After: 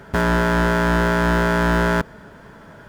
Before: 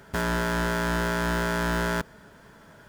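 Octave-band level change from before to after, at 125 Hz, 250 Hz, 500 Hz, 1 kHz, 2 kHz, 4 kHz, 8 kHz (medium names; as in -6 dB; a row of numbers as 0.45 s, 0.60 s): +9.0 dB, +9.0 dB, +9.0 dB, +8.0 dB, +7.0 dB, +4.0 dB, +0.5 dB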